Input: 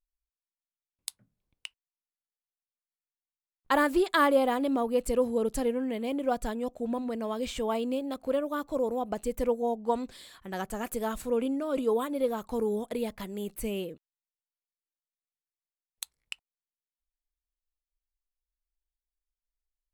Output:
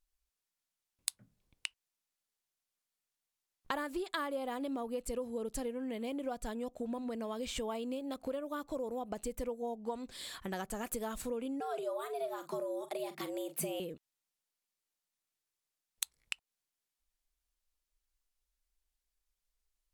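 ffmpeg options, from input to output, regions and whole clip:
-filter_complex "[0:a]asettb=1/sr,asplit=3[s0][s1][s2];[s0]atrim=end=11.604[s3];[s1]atrim=start=11.6:end=13.8,asetpts=PTS-STARTPTS,afade=t=in:d=0.004:c=qsin,afade=t=out:st=2.196:d=0.004:c=qsin,afreqshift=140,asplit=2[s4][s5];[s5]adelay=43,volume=0.224[s6];[s4][s6]amix=inputs=2:normalize=0,atrim=end_sample=97020[s7];[s2]atrim=start=13.796[s8];[s3][s7]acrossfade=d=0.004:c1=hsin:c2=qsin[s9];[s9][s8]acrossfade=d=0.004:c1=qsin:c2=hsin,highshelf=f=10000:g=-11.5,acompressor=threshold=0.00794:ratio=5,aemphasis=mode=production:type=cd,volume=1.78"

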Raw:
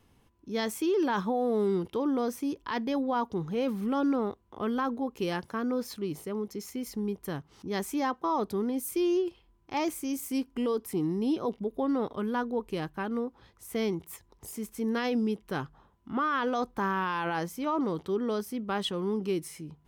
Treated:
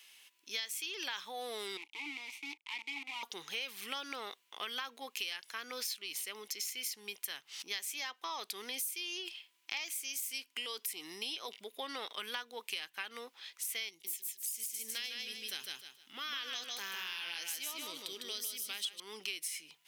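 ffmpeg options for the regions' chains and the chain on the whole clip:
-filter_complex "[0:a]asettb=1/sr,asplit=3[s0][s1][s2];[s0]atrim=end=1.774[s3];[s1]atrim=start=1.77:end=3.23,asetpts=PTS-STARTPTS,afade=t=in:d=0.004:c=qsin,afade=t=out:st=1.456:d=0.004:c=qsin,highshelf=f=4700:g=12,acrusher=bits=6:dc=4:mix=0:aa=0.000001,asplit=3[s4][s5][s6];[s4]bandpass=f=300:t=q:w=8,volume=1[s7];[s5]bandpass=f=870:t=q:w=8,volume=0.501[s8];[s6]bandpass=f=2240:t=q:w=8,volume=0.355[s9];[s7][s8][s9]amix=inputs=3:normalize=0[s10];[s2]atrim=start=3.226[s11];[s3][s10]acrossfade=d=0.004:c1=hsin:c2=qsin[s12];[s12][s11]acrossfade=d=0.004:c1=qsin:c2=hsin,asettb=1/sr,asplit=3[s13][s14][s15];[s13]atrim=end=13.894[s16];[s14]atrim=start=13.89:end=19,asetpts=PTS-STARTPTS,afade=t=in:d=0.004:c=qsin,afade=t=out:st=5.106:d=0.004:c=qsin,highpass=45,equalizer=f=1100:t=o:w=2.6:g=-14.5,aecho=1:1:153|306|459|612:0.668|0.187|0.0524|0.0147,atrim=end_sample=225351[s17];[s15]atrim=start=18.996[s18];[s16][s17]acrossfade=d=0.004:c1=hsin:c2=qsin[s19];[s19][s18]acrossfade=d=0.004:c1=qsin:c2=hsin,highpass=1000,highshelf=f=1700:t=q:w=1.5:g=13,acompressor=threshold=0.0141:ratio=10,volume=1.12"

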